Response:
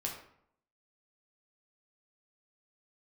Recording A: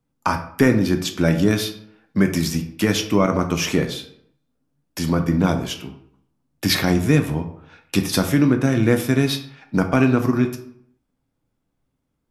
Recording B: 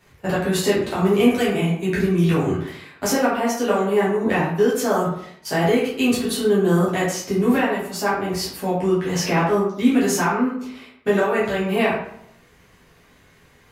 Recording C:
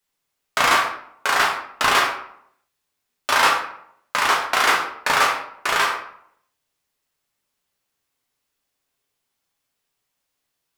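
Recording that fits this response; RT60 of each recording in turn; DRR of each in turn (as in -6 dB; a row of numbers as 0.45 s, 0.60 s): C; 0.65 s, 0.65 s, 0.65 s; 5.5 dB, -8.5 dB, -1.0 dB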